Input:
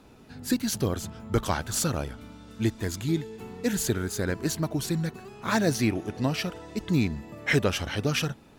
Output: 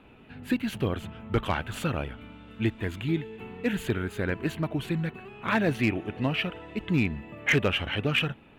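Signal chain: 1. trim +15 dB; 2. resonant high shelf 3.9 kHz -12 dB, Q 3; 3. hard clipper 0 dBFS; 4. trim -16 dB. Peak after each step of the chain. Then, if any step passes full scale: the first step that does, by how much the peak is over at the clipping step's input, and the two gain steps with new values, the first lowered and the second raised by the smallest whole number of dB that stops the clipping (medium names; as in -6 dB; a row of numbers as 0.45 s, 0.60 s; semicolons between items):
+4.0 dBFS, +6.5 dBFS, 0.0 dBFS, -16.0 dBFS; step 1, 6.5 dB; step 1 +8 dB, step 4 -9 dB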